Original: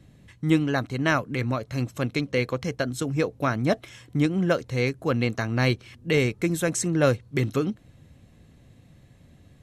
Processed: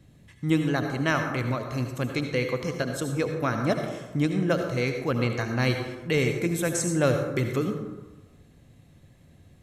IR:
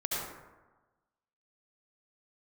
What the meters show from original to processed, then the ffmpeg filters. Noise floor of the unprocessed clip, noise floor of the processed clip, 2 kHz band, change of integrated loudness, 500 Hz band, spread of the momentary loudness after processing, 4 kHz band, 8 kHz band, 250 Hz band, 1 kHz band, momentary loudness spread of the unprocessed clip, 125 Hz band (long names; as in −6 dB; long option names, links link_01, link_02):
−55 dBFS, −55 dBFS, −1.0 dB, −1.0 dB, −1.0 dB, 6 LU, −1.5 dB, 0.0 dB, −1.5 dB, −1.0 dB, 6 LU, −1.5 dB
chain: -filter_complex "[0:a]asplit=2[link_01][link_02];[1:a]atrim=start_sample=2205,highshelf=frequency=8200:gain=11[link_03];[link_02][link_03]afir=irnorm=-1:irlink=0,volume=-8dB[link_04];[link_01][link_04]amix=inputs=2:normalize=0,volume=-5dB"